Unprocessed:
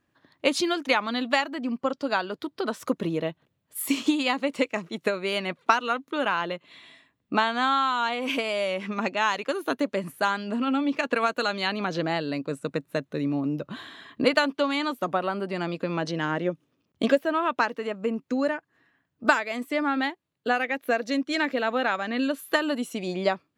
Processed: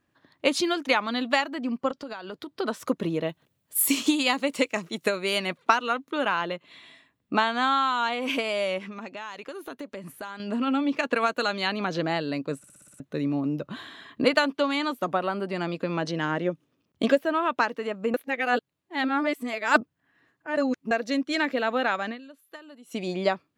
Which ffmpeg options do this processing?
-filter_complex "[0:a]asettb=1/sr,asplit=3[s0][s1][s2];[s0]atrim=end=1.914[s3];[s1]atrim=start=1.91:end=2.56,asetpts=PTS-STARTPTS,afade=t=in:d=0.004:c=qsin,afade=t=out:st=0.646:d=0.004:c=qsin,acompressor=threshold=0.0251:ratio=12:attack=3.2:release=140:knee=1:detection=peak[s4];[s2]atrim=start=2.556[s5];[s3][s4]acrossfade=d=0.004:c1=hsin:c2=qsin[s6];[s6][s5]acrossfade=d=0.004:c1=qsin:c2=hsin,asettb=1/sr,asplit=3[s7][s8][s9];[s7]atrim=end=3.294[s10];[s8]atrim=start=3.29:end=5.58,asetpts=PTS-STARTPTS,afade=t=in:d=0.004:c=qsin,afade=t=out:st=2.286:d=0.004:c=qsin,highshelf=f=4900:g=10.5[s11];[s9]atrim=start=5.576[s12];[s10][s11]acrossfade=d=0.004:c1=hsin:c2=qsin[s13];[s13][s12]acrossfade=d=0.004:c1=qsin:c2=hsin,asettb=1/sr,asplit=3[s14][s15][s16];[s14]atrim=end=8.784[s17];[s15]atrim=start=8.78:end=10.4,asetpts=PTS-STARTPTS,afade=t=in:d=0.004:c=qsin,afade=t=out:st=1.616:d=0.004:c=qsin,acompressor=threshold=0.0141:ratio=3:attack=3.2:release=140:knee=1:detection=peak[s18];[s16]atrim=start=10.396[s19];[s17][s18]acrossfade=d=0.004:c1=hsin:c2=qsin[s20];[s20][s19]acrossfade=d=0.004:c1=qsin:c2=hsin,asplit=12[s21][s22][s23][s24][s25][s26][s27][s28][s29][s30][s31][s32];[s21]atrim=end=12.642[s33];[s22]atrim=start=12.578:end=12.642[s34];[s23]atrim=start=12.578:end=12.642[s35];[s24]atrim=start=12.578:end=12.642[s36];[s25]atrim=start=12.578:end=12.642[s37];[s26]atrim=start=12.578:end=12.642[s38];[s27]atrim=start=12.578:end=12.642[s39];[s28]atrim=start=12.998:end=18.142[s40];[s29]atrim=start=18.138:end=20.912,asetpts=PTS-STARTPTS,areverse[s41];[s30]atrim=start=20.908:end=22.21,asetpts=PTS-STARTPTS,afade=t=out:st=1.182:d=0.12:c=qua:silence=0.0944061[s42];[s31]atrim=start=22.21:end=22.83,asetpts=PTS-STARTPTS,volume=0.0944[s43];[s32]atrim=start=22.83,asetpts=PTS-STARTPTS,afade=t=in:d=0.12:c=qua:silence=0.0944061[s44];[s33][s34]acrossfade=d=0.004:c1=hsin:c2=hsin[s45];[s45][s35]acrossfade=d=0.004:c1=hsin:c2=hsin[s46];[s46][s36]acrossfade=d=0.004:c1=hsin:c2=hsin[s47];[s47][s37]acrossfade=d=0.004:c1=hsin:c2=hsin[s48];[s48][s38]acrossfade=d=0.004:c1=hsin:c2=hsin[s49];[s49][s39]acrossfade=d=0.004:c1=hsin:c2=hsin[s50];[s50][s40]acrossfade=d=0.004:c1=hsin:c2=hsin[s51];[s51][s41]acrossfade=d=0.004:c1=hsin:c2=hsin[s52];[s42][s43][s44]concat=n=3:v=0:a=1[s53];[s52][s53]acrossfade=d=0.004:c1=hsin:c2=hsin"

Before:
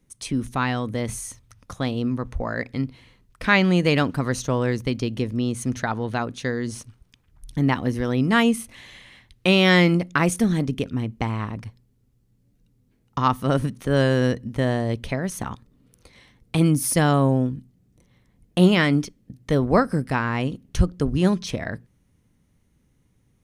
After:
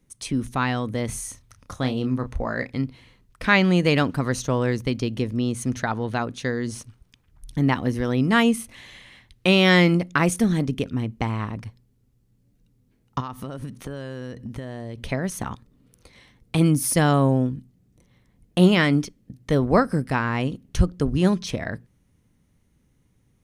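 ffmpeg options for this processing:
-filter_complex "[0:a]asettb=1/sr,asplit=3[s0][s1][s2];[s0]atrim=end=1.074[s3];[s1]atrim=start=1.07:end=2.7,asetpts=PTS-STARTPTS,afade=t=in:d=0.004:c=qsin,afade=t=out:st=1.626:d=0.004:c=qsin,asplit=2[s4][s5];[s5]adelay=31,volume=0.355[s6];[s4][s6]amix=inputs=2:normalize=0,atrim=end_sample=71883[s7];[s2]atrim=start=2.696[s8];[s3][s7]acrossfade=d=0.004:c1=hsin:c2=qsin[s9];[s9][s8]acrossfade=d=0.004:c1=qsin:c2=hsin,asettb=1/sr,asplit=3[s10][s11][s12];[s10]atrim=end=13.204[s13];[s11]atrim=start=13.2:end=14.98,asetpts=PTS-STARTPTS,afade=t=in:d=0.004:c=qsin,afade=t=out:st=1.776:d=0.004:c=qsin,acompressor=threshold=0.0398:ratio=12:attack=3.2:release=140:knee=1:detection=peak[s14];[s12]atrim=start=14.976[s15];[s13][s14]acrossfade=d=0.004:c1=hsin:c2=qsin[s16];[s16][s15]acrossfade=d=0.004:c1=qsin:c2=hsin"

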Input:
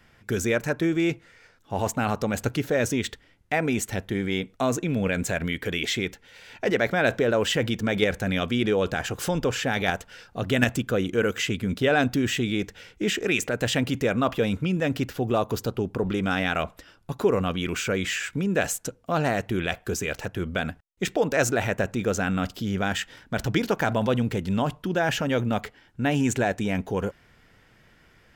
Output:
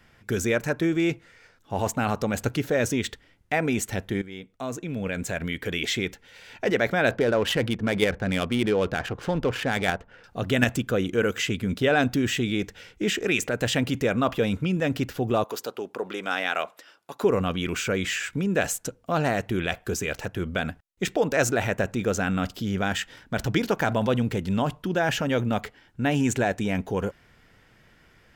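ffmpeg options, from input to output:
-filter_complex "[0:a]asettb=1/sr,asplit=3[s0][s1][s2];[s0]atrim=end=7.114[s3];[s1]atrim=start=7.11:end=10.24,asetpts=PTS-STARTPTS,afade=t=in:d=0.004:c=qsin,afade=t=out:st=3.126:d=0.004:c=qsin,adynamicsmooth=sensitivity=4:basefreq=1300[s4];[s2]atrim=start=10.236[s5];[s3][s4]acrossfade=d=0.004:c1=hsin:c2=qsin[s6];[s6][s5]acrossfade=d=0.004:c1=qsin:c2=hsin,asettb=1/sr,asplit=3[s7][s8][s9];[s7]atrim=end=15.444[s10];[s8]atrim=start=15.44:end=17.23,asetpts=PTS-STARTPTS,afade=t=in:d=0.004:c=qsin,afade=t=out:st=1.786:d=0.004:c=qsin,highpass=460[s11];[s9]atrim=start=17.226[s12];[s10][s11]acrossfade=d=0.004:c1=hsin:c2=qsin[s13];[s13][s12]acrossfade=d=0.004:c1=qsin:c2=hsin,asplit=2[s14][s15];[s14]atrim=end=4.22,asetpts=PTS-STARTPTS,afade=t=out:st=4.216:d=0.004:c=hsin:silence=0.177828[s16];[s15]atrim=start=4.22,asetpts=PTS-STARTPTS,afade=t=in:d=1.68:silence=0.177828[s17];[s16][s17]concat=n=2:v=0:a=1"

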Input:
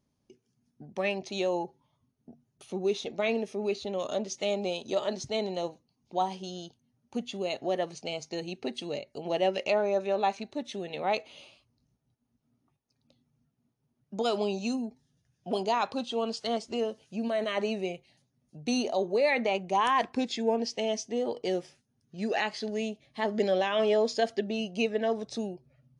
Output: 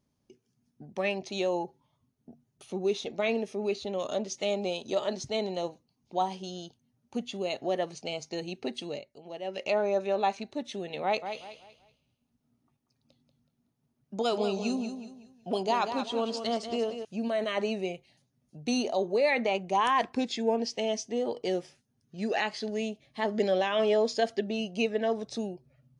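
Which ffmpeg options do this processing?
-filter_complex "[0:a]asettb=1/sr,asplit=3[s0][s1][s2];[s0]atrim=end=11.034[s3];[s1]atrim=start=11.03:end=17.05,asetpts=PTS-STARTPTS,afade=t=in:d=0.004:c=qsin,afade=t=out:st=6.016:d=0.004:c=qsin,aecho=1:1:187|374|561|748:0.376|0.124|0.0409|0.0135,atrim=end_sample=265482[s4];[s2]atrim=start=17.046[s5];[s3][s4]acrossfade=d=0.004:c1=hsin:c2=qsin[s6];[s6][s5]acrossfade=d=0.004:c1=qsin:c2=hsin,asplit=3[s7][s8][s9];[s7]atrim=end=9.16,asetpts=PTS-STARTPTS,afade=t=out:st=8.7:d=0.46:c=qsin:silence=0.266073[s10];[s8]atrim=start=9.16:end=9.44,asetpts=PTS-STARTPTS,volume=0.266[s11];[s9]atrim=start=9.44,asetpts=PTS-STARTPTS,afade=t=in:d=0.46:c=qsin:silence=0.266073[s12];[s10][s11][s12]concat=n=3:v=0:a=1"

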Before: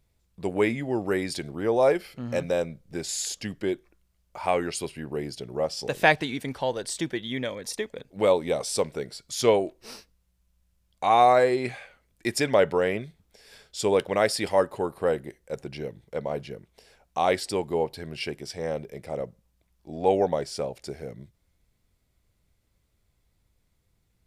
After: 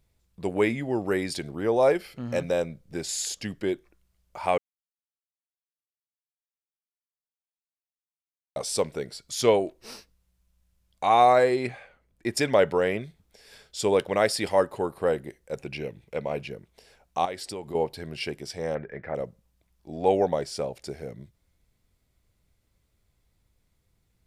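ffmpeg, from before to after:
-filter_complex "[0:a]asettb=1/sr,asplit=3[s0][s1][s2];[s0]atrim=end=11.674[s3];[s1]atrim=start=11.67:end=12.37,asetpts=PTS-STARTPTS,afade=t=in:d=0.004:c=qsin,afade=t=out:st=0.696:d=0.004:c=qsin,highshelf=f=2300:g=-10[s4];[s2]atrim=start=12.366[s5];[s3][s4]acrossfade=d=0.004:c1=hsin:c2=qsin[s6];[s6][s5]acrossfade=d=0.004:c1=qsin:c2=hsin,asettb=1/sr,asplit=3[s7][s8][s9];[s7]atrim=end=15.594[s10];[s8]atrim=start=15.59:end=16.48,asetpts=PTS-STARTPTS,afade=t=in:d=0.004:c=qsin,afade=t=out:st=0.886:d=0.004:c=qsin,equalizer=f=2500:t=o:w=0.28:g=13[s11];[s9]atrim=start=16.476[s12];[s10][s11]acrossfade=d=0.004:c1=hsin:c2=qsin[s13];[s13][s12]acrossfade=d=0.004:c1=qsin:c2=hsin,asettb=1/sr,asplit=3[s14][s15][s16];[s14]atrim=end=17.254[s17];[s15]atrim=start=17.25:end=17.75,asetpts=PTS-STARTPTS,afade=t=in:d=0.004:c=qsin,afade=t=out:st=0.496:d=0.004:c=qsin,acompressor=threshold=0.02:ratio=3:attack=3.2:release=140:knee=1:detection=peak[s18];[s16]atrim=start=17.746[s19];[s17][s18]acrossfade=d=0.004:c1=hsin:c2=qsin[s20];[s20][s19]acrossfade=d=0.004:c1=qsin:c2=hsin,asettb=1/sr,asplit=3[s21][s22][s23];[s21]atrim=end=18.754[s24];[s22]atrim=start=18.75:end=19.15,asetpts=PTS-STARTPTS,afade=t=in:d=0.004:c=qsin,afade=t=out:st=0.396:d=0.004:c=qsin,lowpass=f=1700:t=q:w=6.1[s25];[s23]atrim=start=19.146[s26];[s24][s25]acrossfade=d=0.004:c1=hsin:c2=qsin[s27];[s27][s26]acrossfade=d=0.004:c1=qsin:c2=hsin,asplit=3[s28][s29][s30];[s28]atrim=end=4.58,asetpts=PTS-STARTPTS,afade=t=out:st=4.576:d=0.004:c=hsin[s31];[s29]atrim=start=4.58:end=8.56,asetpts=PTS-STARTPTS,volume=0[s32];[s30]atrim=start=8.56,asetpts=PTS-STARTPTS,afade=t=in:d=0.004:c=hsin[s33];[s31][s32][s33]concat=n=3:v=0:a=1"

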